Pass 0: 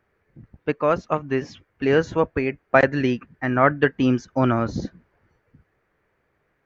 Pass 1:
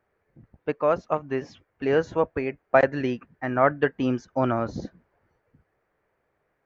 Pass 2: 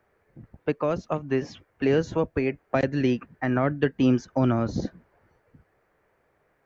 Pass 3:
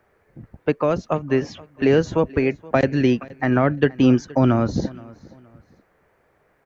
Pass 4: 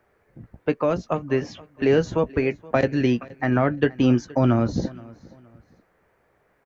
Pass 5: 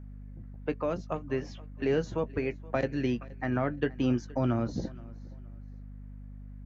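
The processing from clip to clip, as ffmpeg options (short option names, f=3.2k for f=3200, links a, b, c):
-af "equalizer=f=680:w=0.89:g=6.5,volume=-7dB"
-filter_complex "[0:a]acrossover=split=340|3000[a][b][c];[b]acompressor=threshold=-33dB:ratio=6[d];[a][d][c]amix=inputs=3:normalize=0,volume=5.5dB"
-af "aecho=1:1:472|944:0.0794|0.0238,volume=5.5dB"
-filter_complex "[0:a]asplit=2[a][b];[b]adelay=17,volume=-12dB[c];[a][c]amix=inputs=2:normalize=0,volume=-2.5dB"
-af "aeval=exprs='val(0)+0.02*(sin(2*PI*50*n/s)+sin(2*PI*2*50*n/s)/2+sin(2*PI*3*50*n/s)/3+sin(2*PI*4*50*n/s)/4+sin(2*PI*5*50*n/s)/5)':c=same,volume=-9dB"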